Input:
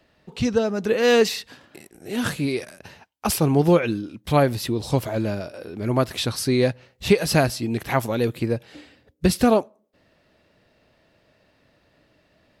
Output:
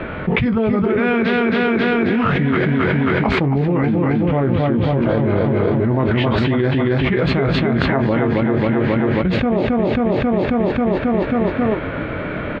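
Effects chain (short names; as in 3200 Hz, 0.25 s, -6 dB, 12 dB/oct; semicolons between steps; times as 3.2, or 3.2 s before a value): doubler 22 ms -9 dB; feedback echo 0.27 s, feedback 60%, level -5 dB; formant shift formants -3 st; LPF 2400 Hz 24 dB/oct; fast leveller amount 100%; gain -5 dB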